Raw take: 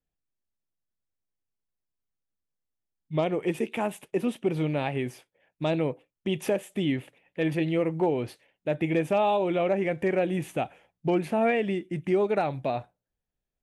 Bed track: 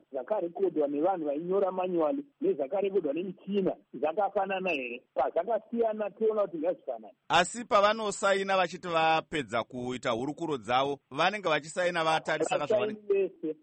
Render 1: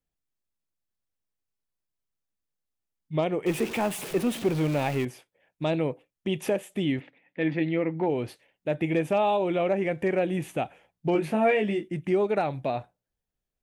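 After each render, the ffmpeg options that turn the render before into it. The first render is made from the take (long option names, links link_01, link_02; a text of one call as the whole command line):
ffmpeg -i in.wav -filter_complex "[0:a]asettb=1/sr,asplit=3[link_01][link_02][link_03];[link_01]atrim=end=3.464[link_04];[link_02]atrim=start=3.46:end=5.05,asetpts=PTS-STARTPTS,afade=type=in:duration=0.004:curve=qsin,afade=type=out:start_time=1.586:duration=0.004:curve=qsin,aeval=exprs='val(0)+0.5*0.0251*sgn(val(0))':channel_layout=same[link_05];[link_03]atrim=start=5.046[link_06];[link_04][link_05]acrossfade=duration=0.004:curve1=hsin:curve2=qsin[link_07];[link_07][link_06]acrossfade=duration=0.004:curve1=qsin:curve2=hsin,asplit=3[link_08][link_09][link_10];[link_08]afade=type=out:start_time=6.99:duration=0.02[link_11];[link_09]highpass=140,equalizer=frequency=270:width_type=q:width=4:gain=7,equalizer=frequency=400:width_type=q:width=4:gain=-5,equalizer=frequency=610:width_type=q:width=4:gain=-3,equalizer=frequency=1100:width_type=q:width=4:gain=-3,equalizer=frequency=2000:width_type=q:width=4:gain=5,equalizer=frequency=2900:width_type=q:width=4:gain=-5,lowpass=frequency=4100:width=0.5412,lowpass=frequency=4100:width=1.3066,afade=type=in:start_time=6.99:duration=0.02,afade=type=out:start_time=8.08:duration=0.02[link_12];[link_10]afade=type=in:start_time=8.08:duration=0.02[link_13];[link_11][link_12][link_13]amix=inputs=3:normalize=0,asettb=1/sr,asplit=3[link_14][link_15][link_16];[link_14]atrim=end=11.134[link_17];[link_15]atrim=start=11.13:end=11.88,asetpts=PTS-STARTPTS,afade=type=in:duration=0.004:curve=qsin,afade=type=out:start_time=0.746:duration=0.004:curve=qsin,asplit=2[link_18][link_19];[link_19]adelay=19,volume=-4dB[link_20];[link_18][link_20]amix=inputs=2:normalize=0,atrim=end_sample=33075[link_21];[link_16]atrim=start=11.876[link_22];[link_17][link_21]acrossfade=duration=0.004:curve1=hsin:curve2=qsin[link_23];[link_23][link_22]acrossfade=duration=0.004:curve1=qsin:curve2=hsin" out.wav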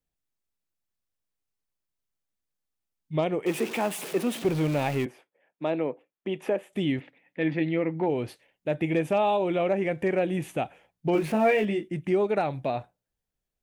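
ffmpeg -i in.wav -filter_complex "[0:a]asettb=1/sr,asplit=3[link_01][link_02][link_03];[link_01]atrim=end=3.404[link_04];[link_02]atrim=start=3.4:end=4.45,asetpts=PTS-STARTPTS,afade=type=in:duration=0.004:curve=qsin,afade=type=out:start_time=1.046:duration=0.004:curve=qsin,highpass=200[link_05];[link_03]atrim=start=4.446[link_06];[link_04][link_05]acrossfade=duration=0.004:curve1=hsin:curve2=qsin[link_07];[link_07][link_06]acrossfade=duration=0.004:curve1=qsin:curve2=hsin,asettb=1/sr,asplit=3[link_08][link_09][link_10];[link_08]atrim=end=5.064[link_11];[link_09]atrim=start=5.06:end=6.73,asetpts=PTS-STARTPTS,afade=type=in:duration=0.004:curve=qsin,afade=type=out:start_time=1.666:duration=0.004:curve=qsin,acrossover=split=200 2600:gain=0.0891 1 0.224[link_12][link_13][link_14];[link_12][link_13][link_14]amix=inputs=3:normalize=0[link_15];[link_10]atrim=start=6.726[link_16];[link_11][link_15]acrossfade=duration=0.004:curve1=hsin:curve2=qsin[link_17];[link_17][link_16]acrossfade=duration=0.004:curve1=qsin:curve2=hsin,asettb=1/sr,asplit=3[link_18][link_19][link_20];[link_18]atrim=end=11.134[link_21];[link_19]atrim=start=11.13:end=11.65,asetpts=PTS-STARTPTS,afade=type=in:duration=0.004:curve=qsin,afade=type=out:start_time=0.516:duration=0.004:curve=qsin,aeval=exprs='val(0)+0.5*0.0106*sgn(val(0))':channel_layout=same[link_22];[link_20]atrim=start=11.646[link_23];[link_21][link_22]acrossfade=duration=0.004:curve1=hsin:curve2=qsin[link_24];[link_24][link_23]acrossfade=duration=0.004:curve1=qsin:curve2=hsin" out.wav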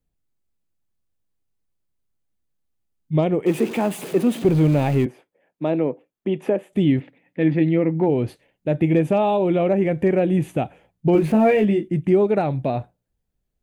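ffmpeg -i in.wav -af "lowshelf=frequency=480:gain=12,bandreject=frequency=5500:width=17" out.wav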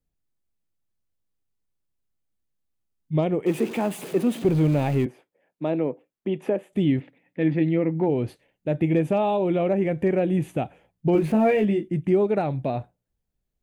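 ffmpeg -i in.wav -af "volume=-3.5dB" out.wav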